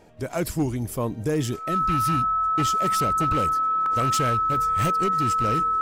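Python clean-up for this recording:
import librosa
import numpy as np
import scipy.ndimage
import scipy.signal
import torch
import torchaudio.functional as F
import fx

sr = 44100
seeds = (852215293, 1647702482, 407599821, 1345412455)

y = fx.fix_declip(x, sr, threshold_db=-17.5)
y = fx.notch(y, sr, hz=1300.0, q=30.0)
y = fx.fix_interpolate(y, sr, at_s=(3.86,), length_ms=1.5)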